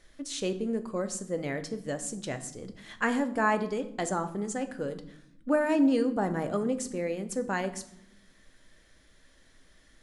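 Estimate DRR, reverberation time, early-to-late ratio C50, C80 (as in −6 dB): 8.5 dB, 0.85 s, 13.5 dB, 16.0 dB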